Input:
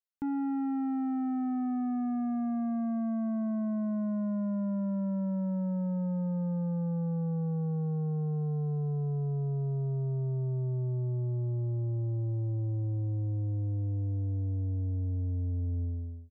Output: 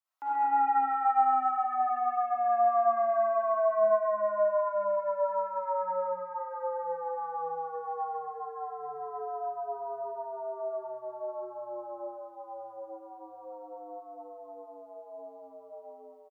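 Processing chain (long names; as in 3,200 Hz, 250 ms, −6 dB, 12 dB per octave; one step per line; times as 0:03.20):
high-pass filter 610 Hz 24 dB per octave
parametric band 970 Hz +13 dB 1.5 octaves
on a send: loudspeakers that aren't time-aligned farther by 46 metres −1 dB, 85 metres −7 dB
on the sum: comb and all-pass reverb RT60 0.69 s, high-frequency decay 0.5×, pre-delay 20 ms, DRR −8.5 dB
level −4 dB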